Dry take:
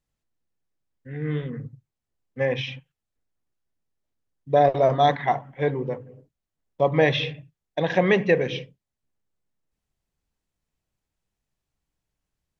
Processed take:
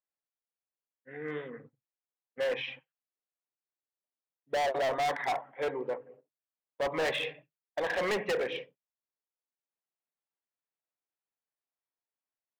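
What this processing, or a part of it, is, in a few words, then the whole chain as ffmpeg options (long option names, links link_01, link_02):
walkie-talkie: -af "highpass=520,lowpass=2200,asoftclip=type=hard:threshold=-27dB,agate=range=-10dB:threshold=-54dB:ratio=16:detection=peak"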